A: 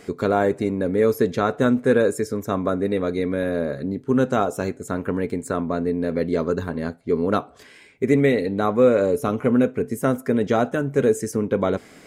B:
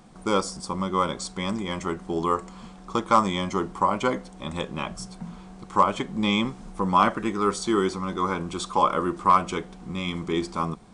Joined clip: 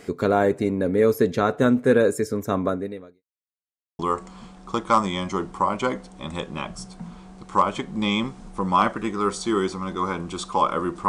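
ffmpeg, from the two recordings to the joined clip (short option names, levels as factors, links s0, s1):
-filter_complex "[0:a]apad=whole_dur=11.08,atrim=end=11.08,asplit=2[s0][s1];[s0]atrim=end=3.23,asetpts=PTS-STARTPTS,afade=t=out:st=2.65:d=0.58:c=qua[s2];[s1]atrim=start=3.23:end=3.99,asetpts=PTS-STARTPTS,volume=0[s3];[1:a]atrim=start=2.2:end=9.29,asetpts=PTS-STARTPTS,afade=t=in:d=0.004:c=hsin[s4];[s2][s3][s4]concat=n=3:v=0:a=1"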